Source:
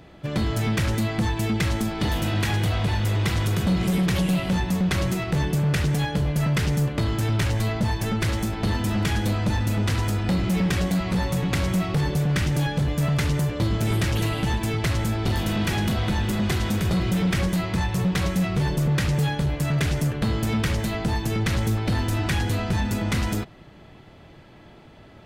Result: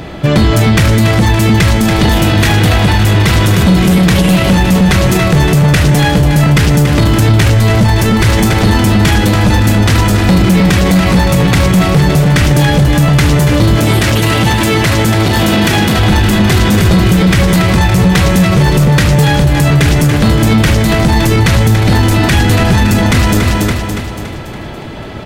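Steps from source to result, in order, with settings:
0:13.76–0:15.99: high-pass filter 150 Hz 6 dB per octave
repeating echo 283 ms, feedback 50%, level −8.5 dB
boost into a limiter +23 dB
level −1 dB

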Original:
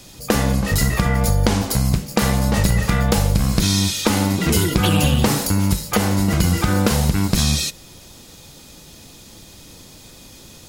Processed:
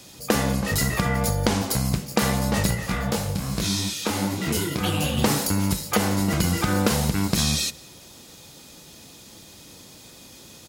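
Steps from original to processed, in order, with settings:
high-pass filter 130 Hz 6 dB per octave
slap from a distant wall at 31 metres, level −23 dB
0:02.74–0:05.16: micro pitch shift up and down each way 58 cents → 40 cents
level −2.5 dB

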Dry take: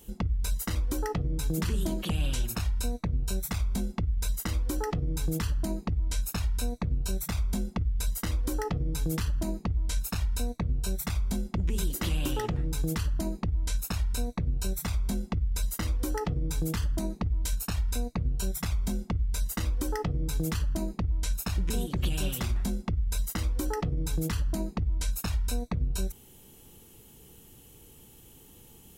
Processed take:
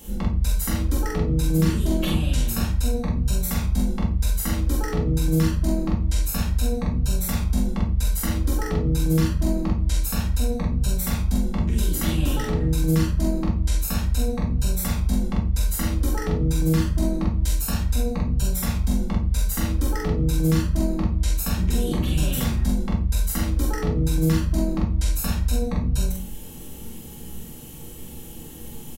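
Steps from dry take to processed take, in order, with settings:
in parallel at −2.5 dB: compressor whose output falls as the input rises −37 dBFS, ratio −1
on the sum: double-tracking delay 44 ms −3 dB
convolution reverb RT60 0.40 s, pre-delay 4 ms, DRR −1 dB
level −2.5 dB

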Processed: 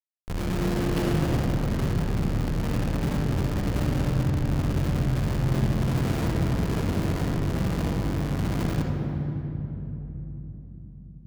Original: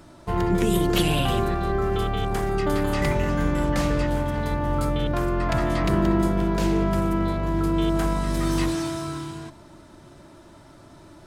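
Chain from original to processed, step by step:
comparator with hysteresis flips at −20 dBFS
on a send: convolution reverb RT60 3.5 s, pre-delay 32 ms, DRR 1 dB
on the sum: level −5 dB

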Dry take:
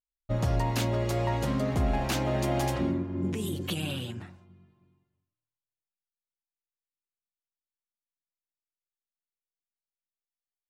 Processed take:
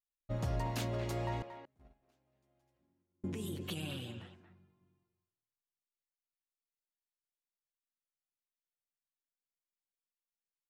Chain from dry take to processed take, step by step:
0:01.42–0:03.24: noise gate −20 dBFS, range −42 dB
far-end echo of a speakerphone 230 ms, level −9 dB
level −8.5 dB

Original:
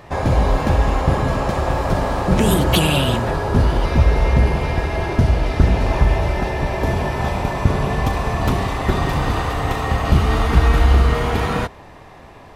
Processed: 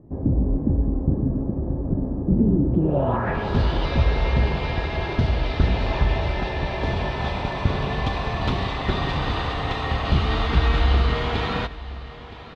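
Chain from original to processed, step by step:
low-pass filter sweep 280 Hz → 3,800 Hz, 0:02.78–0:03.48
single-tap delay 969 ms −16.5 dB
level −5.5 dB

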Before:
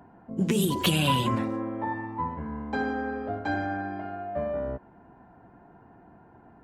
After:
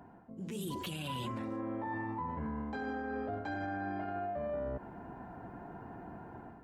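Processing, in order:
reversed playback
downward compressor 8 to 1, threshold −36 dBFS, peak gain reduction 16.5 dB
reversed playback
brickwall limiter −36.5 dBFS, peak gain reduction 9.5 dB
automatic gain control gain up to 8.5 dB
level −2.5 dB

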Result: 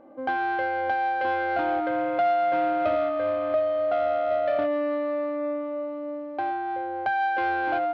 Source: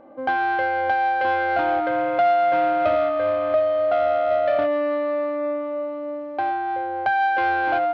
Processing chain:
parametric band 310 Hz +4 dB 1 octave
level −5 dB

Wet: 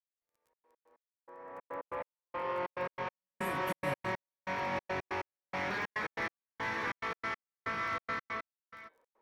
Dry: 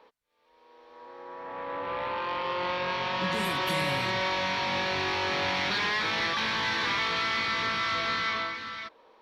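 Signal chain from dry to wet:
octave-band graphic EQ 500/2,000/4,000 Hz +3/+4/−10 dB
surface crackle 23 per second −40 dBFS
parametric band 3,400 Hz −6 dB 1.5 octaves
hum removal 171.8 Hz, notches 28
gate pattern "..xxx.x.x." 141 BPM −60 dB
expander for the loud parts 1.5 to 1, over −51 dBFS
level −3.5 dB

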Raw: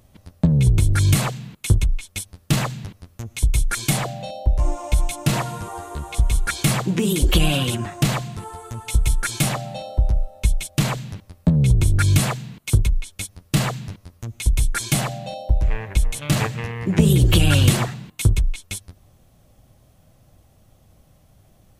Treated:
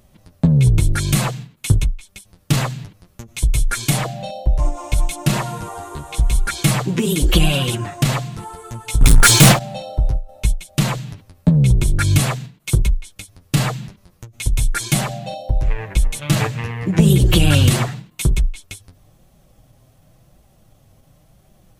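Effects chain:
0:09.01–0:09.59: leveller curve on the samples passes 5
flanger 0.93 Hz, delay 4.9 ms, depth 3 ms, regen −34%
every ending faded ahead of time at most 190 dB per second
level +6 dB

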